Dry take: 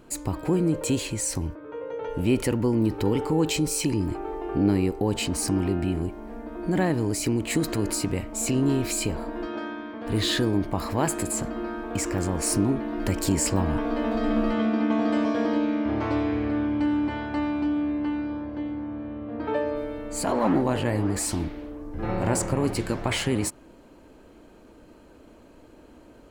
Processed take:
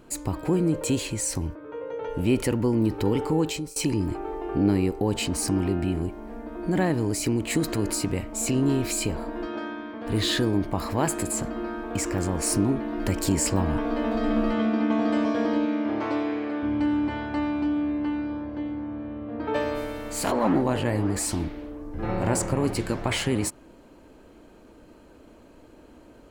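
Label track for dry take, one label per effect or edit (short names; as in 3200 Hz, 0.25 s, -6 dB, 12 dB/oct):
3.360000	3.760000	fade out, to -22 dB
15.650000	16.620000	HPF 150 Hz -> 350 Hz
19.540000	20.300000	spectral contrast lowered exponent 0.69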